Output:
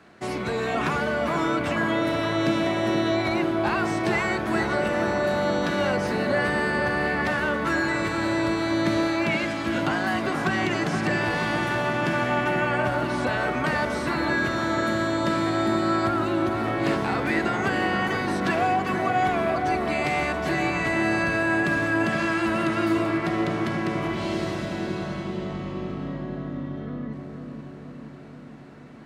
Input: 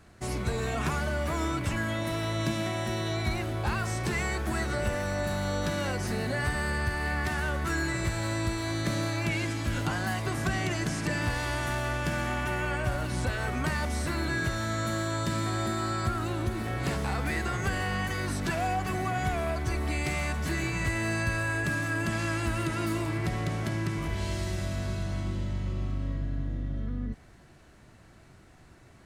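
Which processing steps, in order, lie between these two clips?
three-band isolator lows -21 dB, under 160 Hz, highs -13 dB, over 4.5 kHz; on a send: bucket-brigade echo 476 ms, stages 4096, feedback 69%, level -5 dB; on the sum: trim +6.5 dB

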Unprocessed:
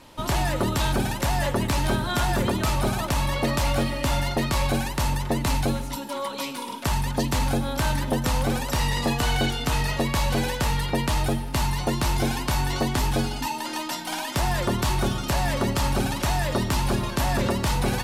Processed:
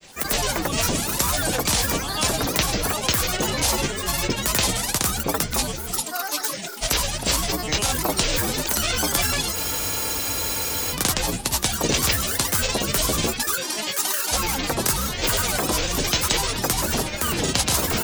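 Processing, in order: tone controls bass -5 dB, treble +14 dB; granulator, grains 20 per s, pitch spread up and down by 12 st; spectral freeze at 9.57 s, 1.36 s; trim +1.5 dB

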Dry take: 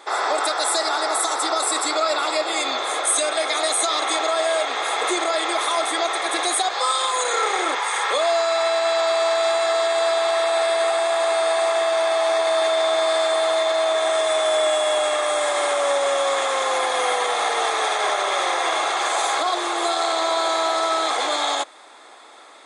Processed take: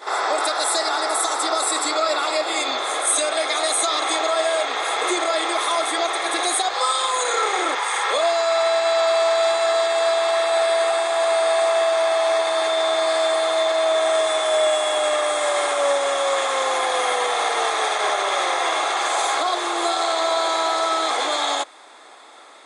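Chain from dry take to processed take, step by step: reverse echo 53 ms -11.5 dB

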